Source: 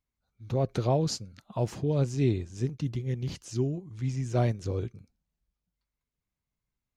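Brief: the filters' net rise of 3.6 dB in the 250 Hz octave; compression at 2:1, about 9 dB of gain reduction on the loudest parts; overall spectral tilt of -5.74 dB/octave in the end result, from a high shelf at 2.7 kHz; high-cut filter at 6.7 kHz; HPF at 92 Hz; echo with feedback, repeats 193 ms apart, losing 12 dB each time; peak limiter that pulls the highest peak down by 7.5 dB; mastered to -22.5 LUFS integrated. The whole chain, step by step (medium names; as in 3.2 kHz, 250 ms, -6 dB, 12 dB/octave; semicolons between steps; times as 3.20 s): high-pass 92 Hz; low-pass 6.7 kHz; peaking EQ 250 Hz +5 dB; treble shelf 2.7 kHz +8 dB; compression 2:1, threshold -35 dBFS; peak limiter -26 dBFS; feedback delay 193 ms, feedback 25%, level -12 dB; trim +15 dB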